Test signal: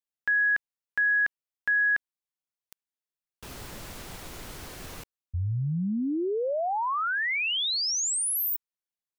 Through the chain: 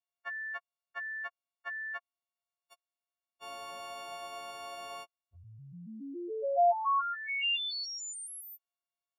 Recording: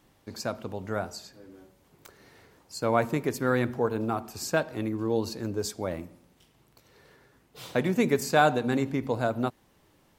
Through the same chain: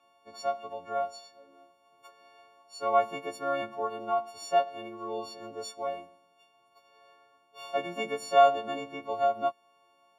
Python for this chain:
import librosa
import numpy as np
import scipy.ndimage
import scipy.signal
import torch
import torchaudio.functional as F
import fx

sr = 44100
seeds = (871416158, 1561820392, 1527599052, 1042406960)

y = fx.freq_snap(x, sr, grid_st=4)
y = fx.vowel_filter(y, sr, vowel='a')
y = fx.dynamic_eq(y, sr, hz=960.0, q=1.2, threshold_db=-45.0, ratio=2.5, max_db=-3)
y = y * librosa.db_to_amplitude(8.0)